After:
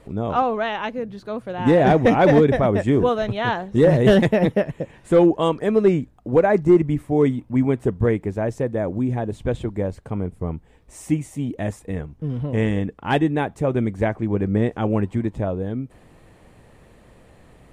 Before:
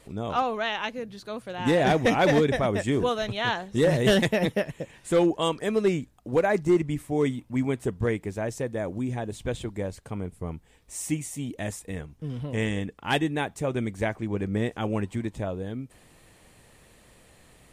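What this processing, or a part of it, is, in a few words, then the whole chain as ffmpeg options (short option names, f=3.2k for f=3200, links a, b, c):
through cloth: -af "highshelf=f=2.3k:g=-15,volume=7.5dB"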